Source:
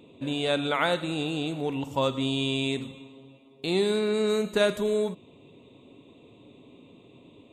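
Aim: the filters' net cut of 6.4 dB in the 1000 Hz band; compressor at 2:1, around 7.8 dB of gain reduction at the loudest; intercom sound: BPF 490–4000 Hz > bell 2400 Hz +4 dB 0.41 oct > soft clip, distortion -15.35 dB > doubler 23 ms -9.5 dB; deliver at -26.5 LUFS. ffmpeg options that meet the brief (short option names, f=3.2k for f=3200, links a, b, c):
-filter_complex "[0:a]equalizer=f=1k:t=o:g=-8.5,acompressor=threshold=-35dB:ratio=2,highpass=490,lowpass=4k,equalizer=f=2.4k:t=o:w=0.41:g=4,asoftclip=threshold=-29.5dB,asplit=2[a][b];[b]adelay=23,volume=-9.5dB[c];[a][c]amix=inputs=2:normalize=0,volume=12.5dB"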